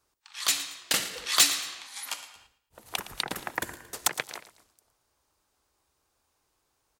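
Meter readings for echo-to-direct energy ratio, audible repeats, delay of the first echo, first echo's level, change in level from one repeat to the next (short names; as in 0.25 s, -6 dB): -14.5 dB, 2, 0.113 s, -15.0 dB, -8.5 dB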